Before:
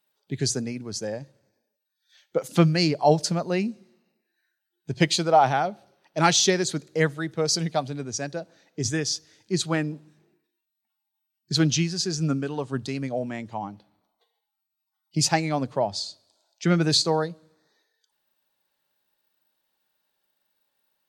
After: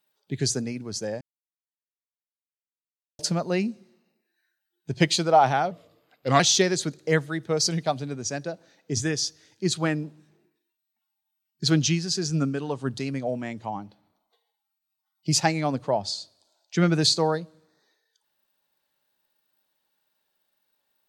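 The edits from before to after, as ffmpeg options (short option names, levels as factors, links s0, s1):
-filter_complex "[0:a]asplit=5[s0][s1][s2][s3][s4];[s0]atrim=end=1.21,asetpts=PTS-STARTPTS,afade=t=out:st=1.206:d=0.004:c=hsin[s5];[s1]atrim=start=1.21:end=3.19,asetpts=PTS-STARTPTS,volume=0[s6];[s2]atrim=start=3.19:end=5.714,asetpts=PTS-STARTPTS,afade=t=in:d=0.004:c=hsin[s7];[s3]atrim=start=5.71:end=6.28,asetpts=PTS-STARTPTS,asetrate=36603,aresample=44100[s8];[s4]atrim=start=6.276[s9];[s5][s6][s7]concat=n=3:v=0:a=1[s10];[s10][s8]acrossfade=d=0.004:c1=hsin:c2=hsin[s11];[s11][s9]acrossfade=d=0.004:c1=hsin:c2=hsin"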